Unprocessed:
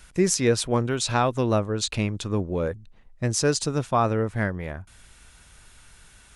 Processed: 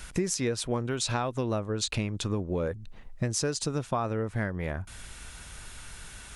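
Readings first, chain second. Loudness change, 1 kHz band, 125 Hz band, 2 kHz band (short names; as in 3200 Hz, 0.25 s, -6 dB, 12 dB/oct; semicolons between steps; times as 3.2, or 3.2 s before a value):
-6.0 dB, -8.0 dB, -5.0 dB, -5.5 dB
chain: compressor 6:1, threshold -34 dBFS, peak gain reduction 17.5 dB; gain +7 dB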